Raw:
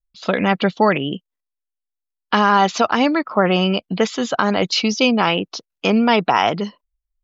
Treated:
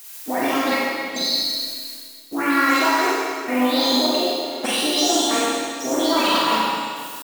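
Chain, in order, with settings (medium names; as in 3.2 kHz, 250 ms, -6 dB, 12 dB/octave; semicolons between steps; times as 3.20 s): delay that grows with frequency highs late, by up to 535 ms; gate -40 dBFS, range -21 dB; treble shelf 4.2 kHz +3.5 dB; level rider gain up to 6.5 dB; peak limiter -11 dBFS, peak gain reduction 9 dB; reverse; compression 8:1, threshold -28 dBFS, peak gain reduction 13 dB; reverse; added noise blue -45 dBFS; pitch shift +5.5 st; trance gate "xxxxxxx.x....." 181 bpm -24 dB; harmony voices +3 st -10 dB; on a send: bucket-brigade echo 130 ms, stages 4096, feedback 58%, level -11 dB; on the sum: Schroeder reverb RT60 1.8 s, combs from 32 ms, DRR -6 dB; trim +5.5 dB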